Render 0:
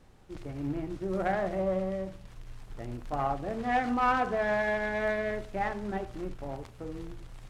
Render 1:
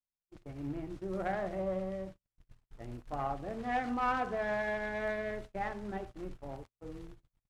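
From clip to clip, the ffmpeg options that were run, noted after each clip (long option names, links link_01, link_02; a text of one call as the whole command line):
ffmpeg -i in.wav -af "agate=range=-44dB:threshold=-39dB:ratio=16:detection=peak,volume=-5.5dB" out.wav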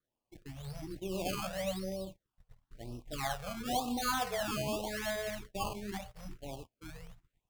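ffmpeg -i in.wav -af "highshelf=frequency=6200:gain=8,acrusher=samples=16:mix=1:aa=0.000001:lfo=1:lforange=16:lforate=0.92,afftfilt=real='re*(1-between(b*sr/1024,280*pow(1800/280,0.5+0.5*sin(2*PI*1.1*pts/sr))/1.41,280*pow(1800/280,0.5+0.5*sin(2*PI*1.1*pts/sr))*1.41))':imag='im*(1-between(b*sr/1024,280*pow(1800/280,0.5+0.5*sin(2*PI*1.1*pts/sr))/1.41,280*pow(1800/280,0.5+0.5*sin(2*PI*1.1*pts/sr))*1.41))':win_size=1024:overlap=0.75" out.wav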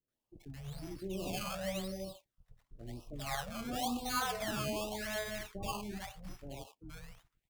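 ffmpeg -i in.wav -filter_complex "[0:a]acrossover=split=600[link_01][link_02];[link_02]adelay=80[link_03];[link_01][link_03]amix=inputs=2:normalize=0,volume=-1dB" out.wav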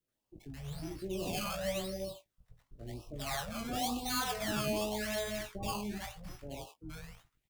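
ffmpeg -i in.wav -filter_complex "[0:a]acrossover=split=460|2300[link_01][link_02][link_03];[link_02]asoftclip=type=tanh:threshold=-36.5dB[link_04];[link_01][link_04][link_03]amix=inputs=3:normalize=0,asplit=2[link_05][link_06];[link_06]adelay=19,volume=-6.5dB[link_07];[link_05][link_07]amix=inputs=2:normalize=0,volume=2dB" out.wav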